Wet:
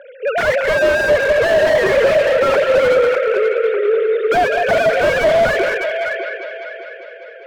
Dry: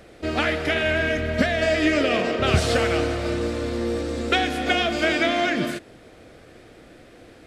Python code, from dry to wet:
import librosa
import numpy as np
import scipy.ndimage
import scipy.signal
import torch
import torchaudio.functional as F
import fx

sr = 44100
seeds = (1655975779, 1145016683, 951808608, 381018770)

p1 = fx.sine_speech(x, sr)
p2 = fx.dynamic_eq(p1, sr, hz=1800.0, q=2.6, threshold_db=-38.0, ratio=4.0, max_db=4)
p3 = fx.fold_sine(p2, sr, drive_db=13, ceiling_db=-4.0)
p4 = p2 + (p3 * librosa.db_to_amplitude(-5.0))
p5 = fx.bandpass_edges(p4, sr, low_hz=500.0, high_hz=2600.0)
p6 = p5 + fx.echo_heads(p5, sr, ms=200, heads='first and third', feedback_pct=51, wet_db=-11.0, dry=0)
y = fx.slew_limit(p6, sr, full_power_hz=220.0)